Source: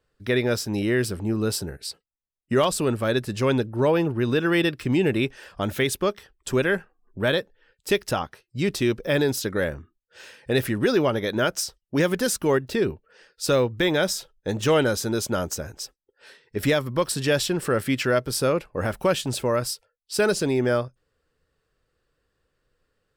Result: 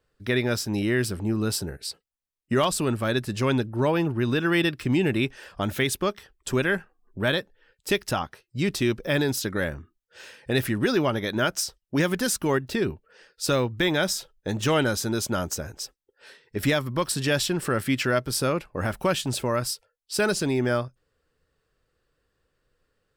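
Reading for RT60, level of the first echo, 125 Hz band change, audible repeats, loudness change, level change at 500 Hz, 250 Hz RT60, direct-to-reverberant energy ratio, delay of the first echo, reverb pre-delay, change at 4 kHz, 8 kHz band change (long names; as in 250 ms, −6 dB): no reverb audible, no echo audible, 0.0 dB, no echo audible, −1.5 dB, −3.5 dB, no reverb audible, no reverb audible, no echo audible, no reverb audible, 0.0 dB, 0.0 dB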